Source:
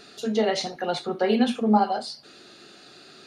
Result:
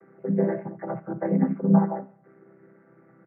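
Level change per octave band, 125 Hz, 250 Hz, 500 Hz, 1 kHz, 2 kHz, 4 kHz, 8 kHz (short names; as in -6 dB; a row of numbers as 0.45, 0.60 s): +10.5 dB, +1.5 dB, -3.5 dB, -8.5 dB, -10.0 dB, under -40 dB, under -40 dB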